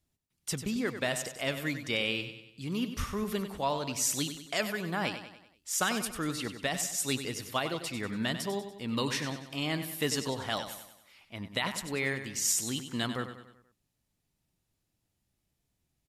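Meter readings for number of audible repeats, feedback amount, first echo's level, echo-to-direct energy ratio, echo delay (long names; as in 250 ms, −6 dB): 4, 48%, −10.0 dB, −9.0 dB, 96 ms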